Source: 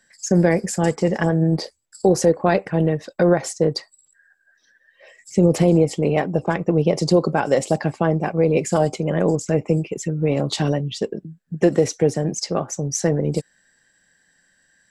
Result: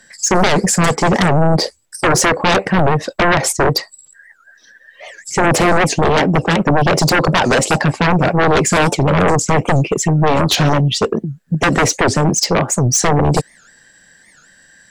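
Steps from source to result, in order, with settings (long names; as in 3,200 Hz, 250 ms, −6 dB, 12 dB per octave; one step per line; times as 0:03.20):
sine wavefolder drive 14 dB, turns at −4 dBFS
wow of a warped record 78 rpm, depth 250 cents
level −4.5 dB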